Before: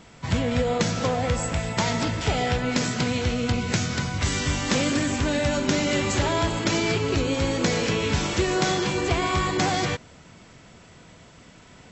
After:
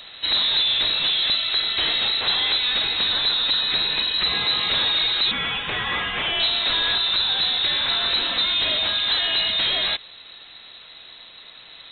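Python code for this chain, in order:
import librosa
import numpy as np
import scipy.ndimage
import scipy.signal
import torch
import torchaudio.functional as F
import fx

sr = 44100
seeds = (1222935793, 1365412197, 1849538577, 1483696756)

y = fx.highpass(x, sr, hz=900.0, slope=12, at=(5.31, 6.4))
y = fx.rider(y, sr, range_db=10, speed_s=2.0)
y = 10.0 ** (-23.5 / 20.0) * np.tanh(y / 10.0 ** (-23.5 / 20.0))
y = fx.freq_invert(y, sr, carrier_hz=4000)
y = F.gain(torch.from_numpy(y), 6.0).numpy()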